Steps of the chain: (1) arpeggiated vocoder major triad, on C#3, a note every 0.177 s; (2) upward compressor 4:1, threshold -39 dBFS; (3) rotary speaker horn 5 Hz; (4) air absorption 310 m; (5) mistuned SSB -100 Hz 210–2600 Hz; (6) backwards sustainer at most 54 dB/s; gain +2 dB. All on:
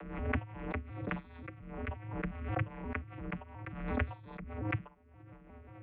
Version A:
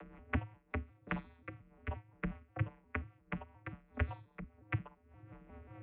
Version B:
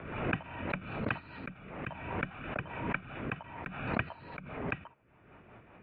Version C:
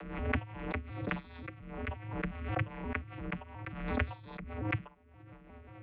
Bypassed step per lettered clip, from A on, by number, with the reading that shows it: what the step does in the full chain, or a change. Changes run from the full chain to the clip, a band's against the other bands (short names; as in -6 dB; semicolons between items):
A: 6, momentary loudness spread change -3 LU; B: 1, 125 Hz band -5.0 dB; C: 4, 2 kHz band +1.5 dB